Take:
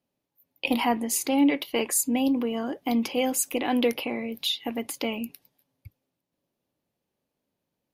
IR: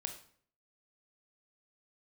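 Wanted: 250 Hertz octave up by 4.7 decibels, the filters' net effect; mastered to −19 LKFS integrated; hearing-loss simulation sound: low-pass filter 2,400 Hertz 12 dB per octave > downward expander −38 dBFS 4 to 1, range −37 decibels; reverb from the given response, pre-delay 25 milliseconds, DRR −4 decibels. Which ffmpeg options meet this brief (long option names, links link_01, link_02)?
-filter_complex "[0:a]equalizer=frequency=250:width_type=o:gain=5,asplit=2[link_01][link_02];[1:a]atrim=start_sample=2205,adelay=25[link_03];[link_02][link_03]afir=irnorm=-1:irlink=0,volume=5.5dB[link_04];[link_01][link_04]amix=inputs=2:normalize=0,lowpass=2400,agate=range=-37dB:threshold=-38dB:ratio=4,volume=-1dB"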